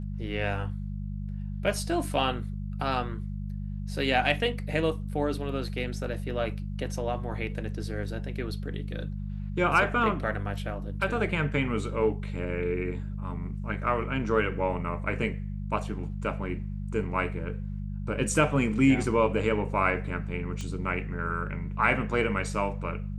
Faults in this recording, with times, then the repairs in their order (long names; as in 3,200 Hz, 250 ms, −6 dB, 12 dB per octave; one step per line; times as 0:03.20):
mains hum 50 Hz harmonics 4 −34 dBFS
0:20.61: click −23 dBFS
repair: click removal
hum removal 50 Hz, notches 4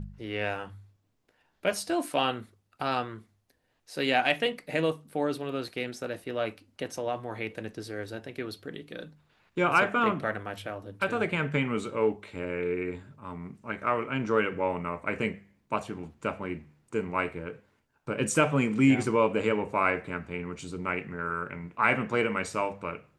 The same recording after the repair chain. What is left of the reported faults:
none of them is left